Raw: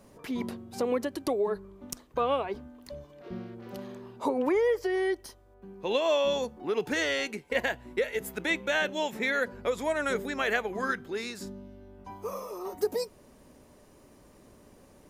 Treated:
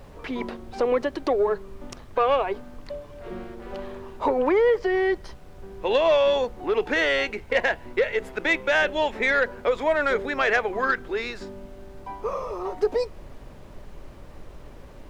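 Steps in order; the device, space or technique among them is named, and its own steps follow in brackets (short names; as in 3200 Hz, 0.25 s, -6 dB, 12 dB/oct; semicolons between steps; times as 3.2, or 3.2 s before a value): aircraft cabin announcement (BPF 360–3100 Hz; soft clip -20 dBFS, distortion -21 dB; brown noise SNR 16 dB); gain +8.5 dB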